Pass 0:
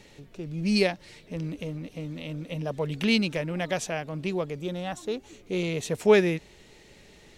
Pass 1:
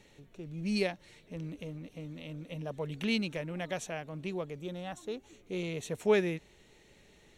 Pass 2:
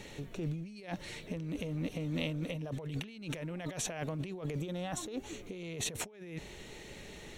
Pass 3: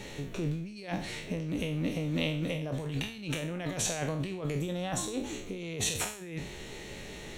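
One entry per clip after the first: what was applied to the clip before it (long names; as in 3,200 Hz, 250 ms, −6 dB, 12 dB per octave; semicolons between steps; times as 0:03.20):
notch filter 4,900 Hz, Q 5.5; level −7.5 dB
compressor whose output falls as the input rises −45 dBFS, ratio −1; level +4.5 dB
peak hold with a decay on every bin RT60 0.49 s; level +3.5 dB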